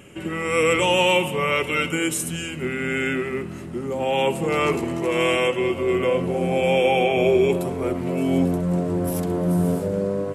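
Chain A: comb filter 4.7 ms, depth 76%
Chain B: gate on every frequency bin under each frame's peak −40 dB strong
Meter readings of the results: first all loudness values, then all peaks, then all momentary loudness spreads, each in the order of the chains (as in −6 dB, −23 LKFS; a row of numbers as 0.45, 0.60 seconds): −20.0, −22.0 LKFS; −5.5, −8.0 dBFS; 8, 8 LU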